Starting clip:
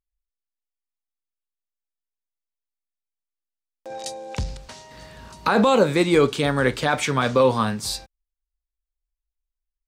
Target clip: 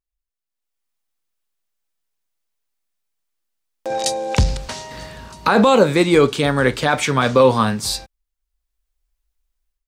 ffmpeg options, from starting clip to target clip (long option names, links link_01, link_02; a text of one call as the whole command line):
ffmpeg -i in.wav -af "dynaudnorm=framelen=440:gausssize=3:maxgain=13dB,volume=-1dB" out.wav